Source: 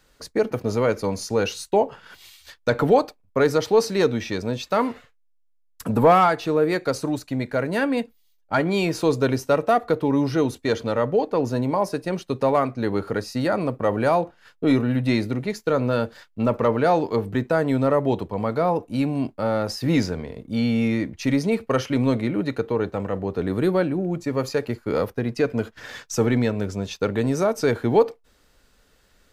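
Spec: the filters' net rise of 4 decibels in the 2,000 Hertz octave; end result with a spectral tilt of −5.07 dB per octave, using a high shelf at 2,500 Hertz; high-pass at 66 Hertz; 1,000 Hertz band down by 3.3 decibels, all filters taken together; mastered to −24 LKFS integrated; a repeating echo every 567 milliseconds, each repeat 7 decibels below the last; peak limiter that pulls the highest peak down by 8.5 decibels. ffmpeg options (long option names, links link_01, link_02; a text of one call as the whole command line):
ffmpeg -i in.wav -af "highpass=66,equalizer=frequency=1000:width_type=o:gain=-7.5,equalizer=frequency=2000:width_type=o:gain=5,highshelf=frequency=2500:gain=6,alimiter=limit=-15dB:level=0:latency=1,aecho=1:1:567|1134|1701|2268|2835:0.447|0.201|0.0905|0.0407|0.0183,volume=1.5dB" out.wav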